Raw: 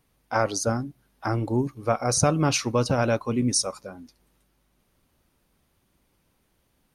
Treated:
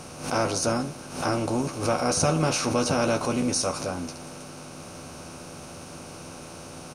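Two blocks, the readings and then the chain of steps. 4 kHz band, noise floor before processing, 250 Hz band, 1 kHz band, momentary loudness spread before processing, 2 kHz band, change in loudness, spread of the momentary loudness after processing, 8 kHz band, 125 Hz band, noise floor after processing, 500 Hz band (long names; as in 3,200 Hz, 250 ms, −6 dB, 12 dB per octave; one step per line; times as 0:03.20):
+0.5 dB, −70 dBFS, 0.0 dB, +0.5 dB, 11 LU, +0.5 dB, −1.0 dB, 18 LU, −0.5 dB, −3.0 dB, −42 dBFS, 0.0 dB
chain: compressor on every frequency bin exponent 0.4
double-tracking delay 12 ms −5 dB
background raised ahead of every attack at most 99 dB per second
level −7 dB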